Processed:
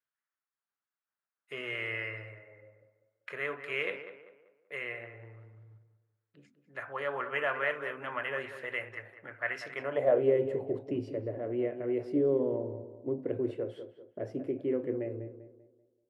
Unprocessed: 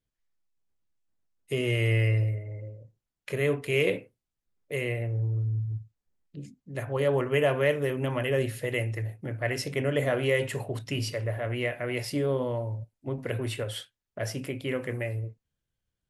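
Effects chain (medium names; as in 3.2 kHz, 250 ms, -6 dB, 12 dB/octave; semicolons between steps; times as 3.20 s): tape echo 194 ms, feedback 42%, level -9.5 dB, low-pass 1.8 kHz; band-pass sweep 1.4 kHz -> 350 Hz, 9.75–10.30 s; trim +4.5 dB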